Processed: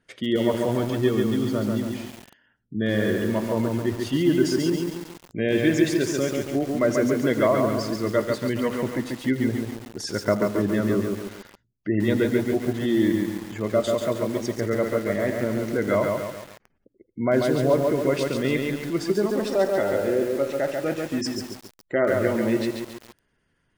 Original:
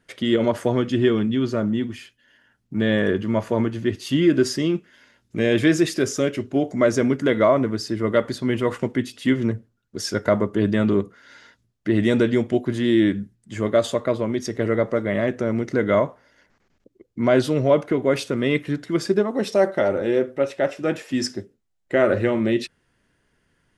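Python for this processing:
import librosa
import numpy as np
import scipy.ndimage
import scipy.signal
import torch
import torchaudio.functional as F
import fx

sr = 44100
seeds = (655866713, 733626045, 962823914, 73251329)

y = fx.spec_gate(x, sr, threshold_db=-30, keep='strong')
y = y + 10.0 ** (-17.0 / 20.0) * np.pad(y, (int(82 * sr / 1000.0), 0))[:len(y)]
y = fx.echo_crushed(y, sr, ms=139, feedback_pct=55, bits=6, wet_db=-3)
y = F.gain(torch.from_numpy(y), -4.0).numpy()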